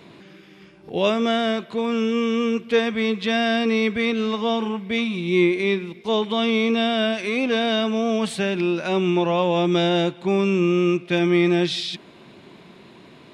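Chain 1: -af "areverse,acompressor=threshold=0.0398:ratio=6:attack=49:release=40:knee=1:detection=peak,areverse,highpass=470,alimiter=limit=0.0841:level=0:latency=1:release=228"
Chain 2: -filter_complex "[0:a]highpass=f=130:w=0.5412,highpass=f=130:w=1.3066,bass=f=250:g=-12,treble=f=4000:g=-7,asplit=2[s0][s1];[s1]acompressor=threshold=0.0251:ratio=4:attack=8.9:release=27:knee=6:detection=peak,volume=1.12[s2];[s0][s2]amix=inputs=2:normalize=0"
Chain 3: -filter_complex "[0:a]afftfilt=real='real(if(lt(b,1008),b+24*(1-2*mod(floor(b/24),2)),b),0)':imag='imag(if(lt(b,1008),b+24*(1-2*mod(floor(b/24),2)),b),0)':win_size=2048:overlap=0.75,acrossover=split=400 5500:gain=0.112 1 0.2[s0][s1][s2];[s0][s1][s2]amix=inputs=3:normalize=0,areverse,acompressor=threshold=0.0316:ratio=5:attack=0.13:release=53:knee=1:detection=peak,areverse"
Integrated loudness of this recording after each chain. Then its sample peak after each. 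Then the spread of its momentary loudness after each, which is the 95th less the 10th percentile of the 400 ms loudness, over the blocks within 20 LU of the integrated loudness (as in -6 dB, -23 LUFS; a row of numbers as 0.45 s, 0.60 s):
-32.0 LUFS, -20.5 LUFS, -34.0 LUFS; -21.5 dBFS, -6.0 dBFS, -25.5 dBFS; 19 LU, 4 LU, 14 LU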